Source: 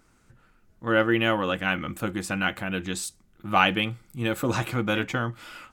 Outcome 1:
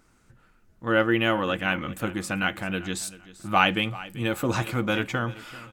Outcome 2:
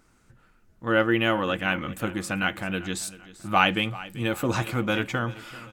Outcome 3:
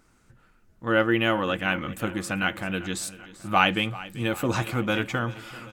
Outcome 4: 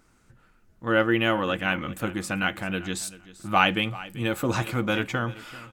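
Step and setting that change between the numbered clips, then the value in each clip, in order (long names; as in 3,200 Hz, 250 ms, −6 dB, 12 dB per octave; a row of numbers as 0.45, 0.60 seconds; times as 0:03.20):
repeating echo, feedback: 26, 40, 59, 18%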